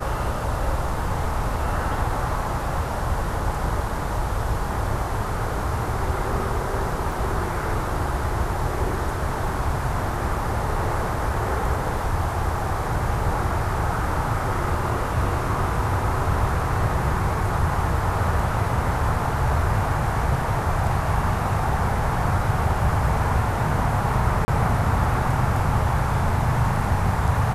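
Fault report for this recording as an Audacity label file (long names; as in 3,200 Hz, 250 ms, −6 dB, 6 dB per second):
7.120000	7.120000	drop-out 2.4 ms
24.450000	24.480000	drop-out 30 ms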